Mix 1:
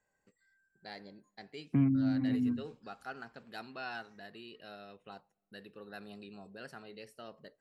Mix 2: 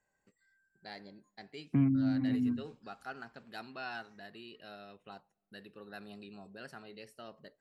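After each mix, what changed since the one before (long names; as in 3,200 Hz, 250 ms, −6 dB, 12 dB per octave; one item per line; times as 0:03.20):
master: add parametric band 480 Hz −4 dB 0.22 octaves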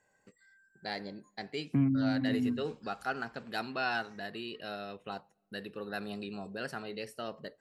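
first voice +9.0 dB
master: add parametric band 480 Hz +4 dB 0.22 octaves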